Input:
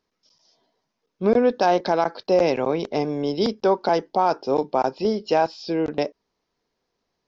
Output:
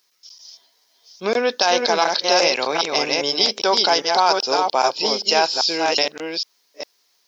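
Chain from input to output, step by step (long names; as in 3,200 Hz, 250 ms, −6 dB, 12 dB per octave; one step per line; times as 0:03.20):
delay that plays each chunk backwards 402 ms, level −3.5 dB
first difference
boost into a limiter +24.5 dB
level −3 dB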